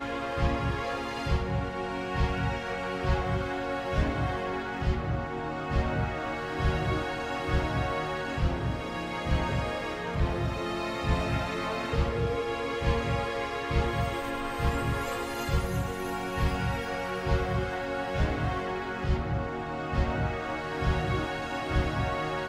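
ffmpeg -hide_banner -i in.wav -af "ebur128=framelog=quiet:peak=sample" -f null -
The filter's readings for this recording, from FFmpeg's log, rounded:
Integrated loudness:
  I:         -30.5 LUFS
  Threshold: -40.5 LUFS
Loudness range:
  LRA:         1.0 LU
  Threshold: -50.5 LUFS
  LRA low:   -31.0 LUFS
  LRA high:  -30.0 LUFS
Sample peak:
  Peak:      -12.9 dBFS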